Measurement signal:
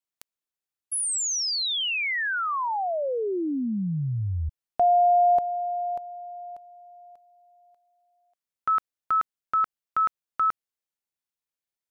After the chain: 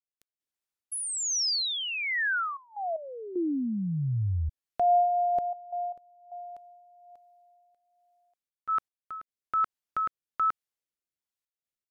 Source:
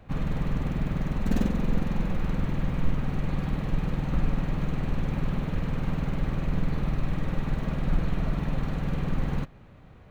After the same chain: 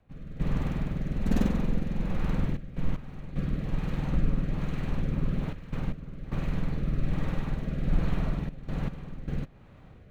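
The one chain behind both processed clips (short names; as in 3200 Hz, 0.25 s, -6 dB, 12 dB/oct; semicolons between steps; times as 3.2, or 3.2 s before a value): rotary speaker horn 1.2 Hz; step gate "..xxxxxxxxxxx.x" 76 bpm -12 dB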